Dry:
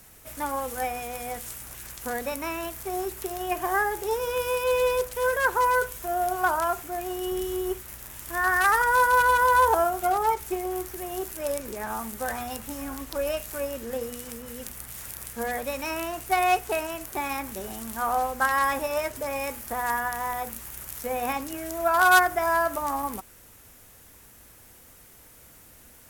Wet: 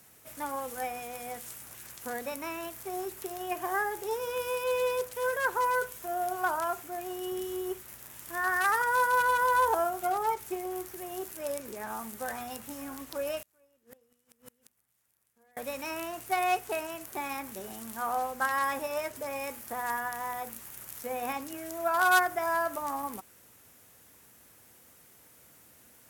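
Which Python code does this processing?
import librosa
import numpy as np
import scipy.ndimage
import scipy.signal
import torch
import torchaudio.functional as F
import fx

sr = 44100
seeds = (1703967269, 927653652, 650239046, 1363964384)

y = scipy.signal.sosfilt(scipy.signal.butter(2, 110.0, 'highpass', fs=sr, output='sos'), x)
y = fx.gate_flip(y, sr, shuts_db=-25.0, range_db=-30, at=(13.41, 15.57))
y = y * 10.0 ** (-5.5 / 20.0)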